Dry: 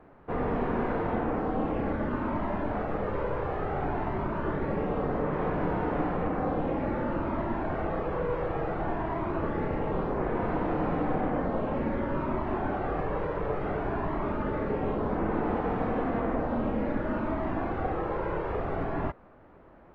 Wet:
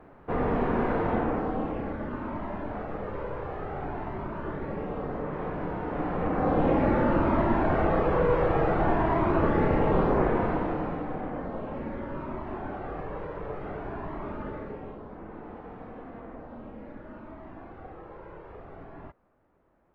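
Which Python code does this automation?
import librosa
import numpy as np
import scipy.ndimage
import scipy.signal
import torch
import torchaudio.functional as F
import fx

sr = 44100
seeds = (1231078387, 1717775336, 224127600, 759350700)

y = fx.gain(x, sr, db=fx.line((1.19, 2.5), (1.92, -4.0), (5.84, -4.0), (6.67, 6.5), (10.17, 6.5), (11.06, -5.5), (14.47, -5.5), (15.07, -14.0)))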